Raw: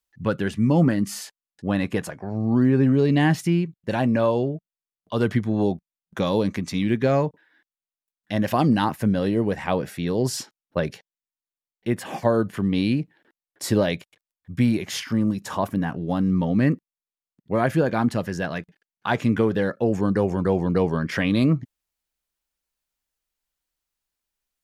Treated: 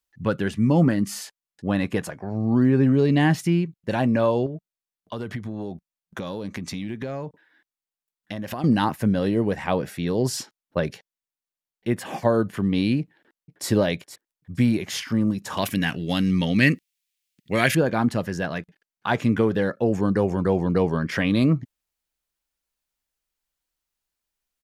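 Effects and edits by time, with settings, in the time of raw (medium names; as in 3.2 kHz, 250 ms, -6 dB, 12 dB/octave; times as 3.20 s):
4.46–8.64 s: compression, threshold -27 dBFS
13.01–13.68 s: echo throw 470 ms, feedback 25%, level -12.5 dB
15.57–17.75 s: resonant high shelf 1.6 kHz +14 dB, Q 1.5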